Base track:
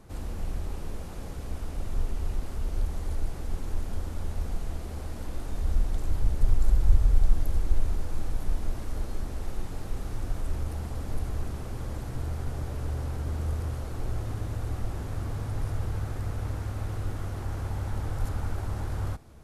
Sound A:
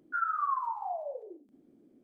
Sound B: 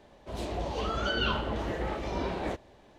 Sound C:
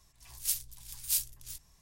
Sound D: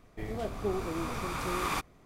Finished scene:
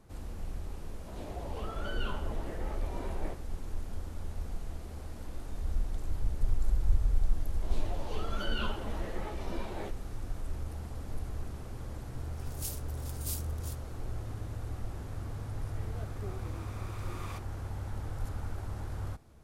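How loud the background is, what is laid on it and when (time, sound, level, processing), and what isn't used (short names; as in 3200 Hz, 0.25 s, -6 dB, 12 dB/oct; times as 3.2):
base track -6.5 dB
0.79 add B -8.5 dB + high shelf 3500 Hz -11 dB
7.34 add B -4.5 dB + ensemble effect
12.17 add C -3.5 dB + limiter -22.5 dBFS
15.58 add D -14 dB
not used: A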